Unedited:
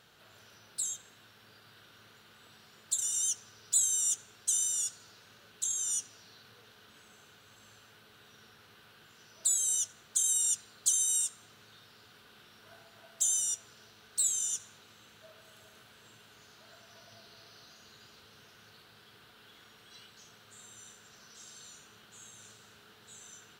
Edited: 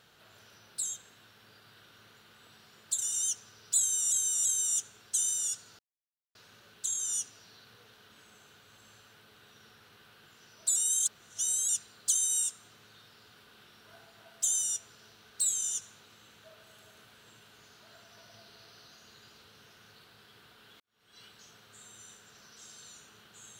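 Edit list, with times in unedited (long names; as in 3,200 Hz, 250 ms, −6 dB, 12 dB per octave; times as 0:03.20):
0:03.79–0:04.12: repeat, 3 plays
0:05.13: splice in silence 0.56 s
0:09.54–0:10.47: reverse
0:19.58–0:20.01: fade in quadratic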